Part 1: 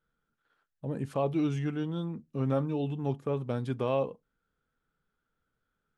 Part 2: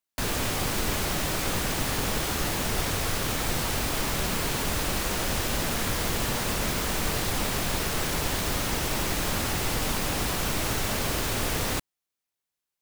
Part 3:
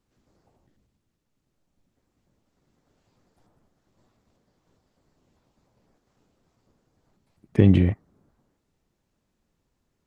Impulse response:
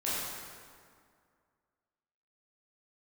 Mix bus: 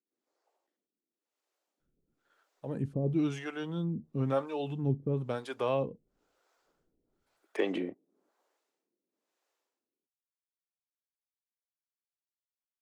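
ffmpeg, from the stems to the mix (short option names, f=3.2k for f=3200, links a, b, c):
-filter_complex "[0:a]adelay=1800,volume=-4.5dB[a];[2:a]highpass=f=320:w=0.5412,highpass=f=320:w=1.3066,volume=-9dB[b];[a][b]amix=inputs=2:normalize=0,dynaudnorm=f=860:g=3:m=9dB,acrossover=split=410[c][d];[c]aeval=exprs='val(0)*(1-1/2+1/2*cos(2*PI*1*n/s))':c=same[e];[d]aeval=exprs='val(0)*(1-1/2-1/2*cos(2*PI*1*n/s))':c=same[f];[e][f]amix=inputs=2:normalize=0"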